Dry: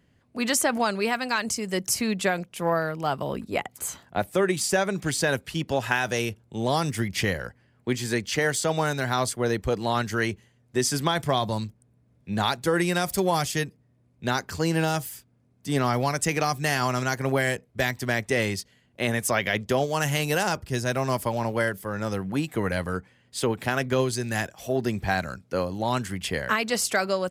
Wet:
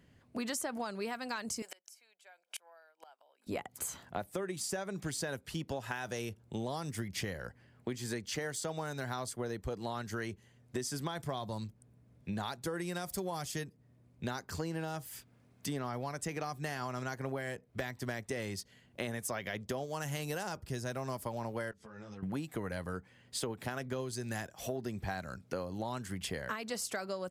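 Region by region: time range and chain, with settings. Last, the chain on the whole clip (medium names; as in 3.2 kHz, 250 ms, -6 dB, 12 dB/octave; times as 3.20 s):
1.62–3.47 s: Bessel high-pass 650 Hz, order 6 + comb 1.3 ms, depth 45% + inverted gate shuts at -26 dBFS, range -33 dB
14.59–18.02 s: tone controls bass -1 dB, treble -5 dB + tape noise reduction on one side only encoder only
21.71–22.23 s: low-pass 6.9 kHz 24 dB/octave + compression 8:1, threshold -42 dBFS + three-phase chorus
whole clip: dynamic bell 2.5 kHz, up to -4 dB, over -43 dBFS, Q 1.4; compression 5:1, threshold -36 dBFS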